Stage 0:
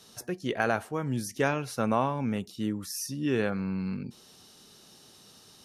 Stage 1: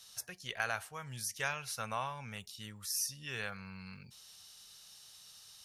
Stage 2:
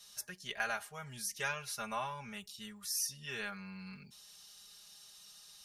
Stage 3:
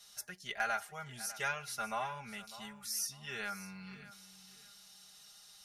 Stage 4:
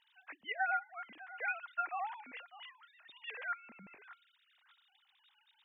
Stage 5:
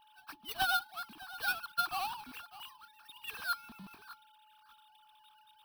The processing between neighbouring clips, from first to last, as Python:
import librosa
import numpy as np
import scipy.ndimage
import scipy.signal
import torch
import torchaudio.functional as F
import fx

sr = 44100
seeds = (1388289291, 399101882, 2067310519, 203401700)

y1 = fx.tone_stack(x, sr, knobs='10-0-10')
y1 = y1 * librosa.db_to_amplitude(1.0)
y2 = y1 + 0.9 * np.pad(y1, (int(4.9 * sr / 1000.0), 0))[:len(y1)]
y2 = y2 * librosa.db_to_amplitude(-3.0)
y3 = fx.small_body(y2, sr, hz=(740.0, 1400.0, 2000.0), ring_ms=25, db=8)
y3 = np.clip(y3, -10.0 ** (-22.0 / 20.0), 10.0 ** (-22.0 / 20.0))
y3 = fx.echo_feedback(y3, sr, ms=601, feedback_pct=27, wet_db=-16)
y3 = y3 * librosa.db_to_amplitude(-1.5)
y4 = fx.sine_speech(y3, sr)
y4 = y4 * librosa.db_to_amplitude(-1.0)
y5 = fx.halfwave_hold(y4, sr)
y5 = y5 + 10.0 ** (-62.0 / 20.0) * np.sin(2.0 * np.pi * 860.0 * np.arange(len(y5)) / sr)
y5 = fx.fixed_phaser(y5, sr, hz=2000.0, stages=6)
y5 = y5 * librosa.db_to_amplitude(2.5)